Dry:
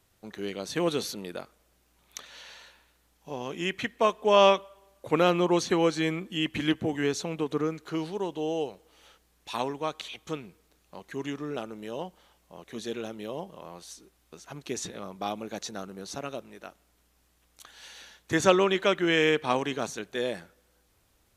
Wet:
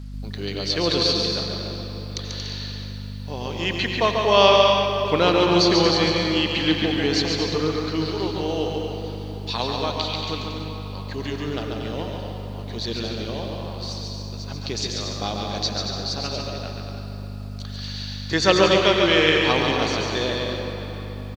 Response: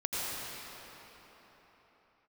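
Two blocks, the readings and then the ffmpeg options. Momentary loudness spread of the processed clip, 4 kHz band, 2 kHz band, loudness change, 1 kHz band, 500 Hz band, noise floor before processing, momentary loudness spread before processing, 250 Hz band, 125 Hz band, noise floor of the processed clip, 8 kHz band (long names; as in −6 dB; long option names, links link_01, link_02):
17 LU, +13.0 dB, +7.5 dB, +6.5 dB, +6.0 dB, +6.0 dB, −68 dBFS, 21 LU, +6.0 dB, +11.0 dB, −33 dBFS, +5.5 dB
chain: -filter_complex "[0:a]lowpass=frequency=4600:width_type=q:width=7.1,asplit=2[link_01][link_02];[1:a]atrim=start_sample=2205[link_03];[link_02][link_03]afir=irnorm=-1:irlink=0,volume=-9.5dB[link_04];[link_01][link_04]amix=inputs=2:normalize=0,aeval=exprs='val(0)+0.02*(sin(2*PI*50*n/s)+sin(2*PI*2*50*n/s)/2+sin(2*PI*3*50*n/s)/3+sin(2*PI*4*50*n/s)/4+sin(2*PI*5*50*n/s)/5)':channel_layout=same,aecho=1:1:140|231|290.2|328.6|353.6:0.631|0.398|0.251|0.158|0.1,acrusher=bits=8:mix=0:aa=0.5"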